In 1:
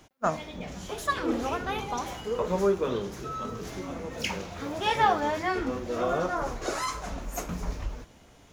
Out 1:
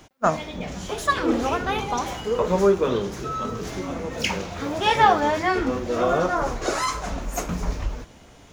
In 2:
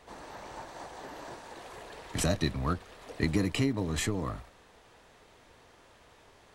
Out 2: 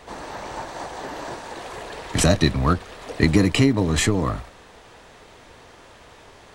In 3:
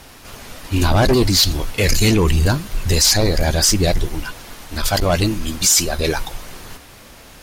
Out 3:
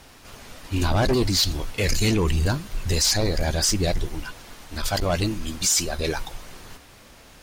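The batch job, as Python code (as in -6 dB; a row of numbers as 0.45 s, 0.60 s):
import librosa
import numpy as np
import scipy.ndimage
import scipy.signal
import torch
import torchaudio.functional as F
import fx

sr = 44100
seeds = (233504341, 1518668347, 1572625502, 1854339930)

y = fx.peak_eq(x, sr, hz=12000.0, db=-6.5, octaves=0.31)
y = y * 10.0 ** (-24 / 20.0) / np.sqrt(np.mean(np.square(y)))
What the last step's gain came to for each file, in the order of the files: +6.5 dB, +11.0 dB, -6.5 dB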